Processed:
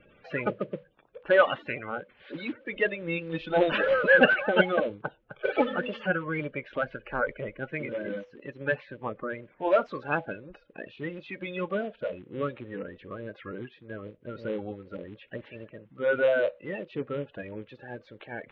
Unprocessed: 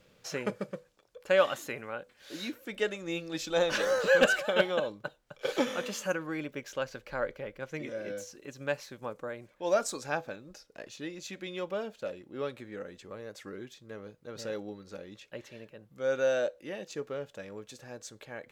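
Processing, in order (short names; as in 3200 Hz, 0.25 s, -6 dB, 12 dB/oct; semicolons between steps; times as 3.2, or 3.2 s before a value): bin magnitudes rounded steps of 30 dB; steep low-pass 3100 Hz 36 dB/oct; gain +5 dB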